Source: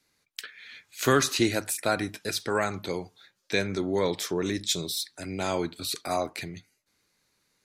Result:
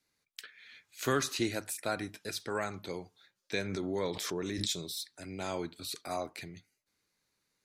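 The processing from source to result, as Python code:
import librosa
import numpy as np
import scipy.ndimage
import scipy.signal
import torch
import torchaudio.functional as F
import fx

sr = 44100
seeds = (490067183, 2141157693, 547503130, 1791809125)

y = fx.pre_swell(x, sr, db_per_s=29.0, at=(3.53, 4.79))
y = F.gain(torch.from_numpy(y), -8.0).numpy()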